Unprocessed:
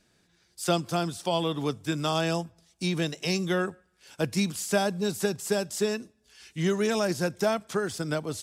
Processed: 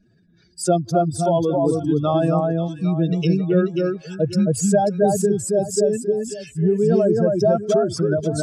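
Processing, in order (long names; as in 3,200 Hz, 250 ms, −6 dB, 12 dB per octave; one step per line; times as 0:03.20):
expanding power law on the bin magnitudes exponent 2.6
pitch vibrato 1.9 Hz 10 cents
delay that swaps between a low-pass and a high-pass 269 ms, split 1,800 Hz, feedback 51%, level −2 dB
level +8 dB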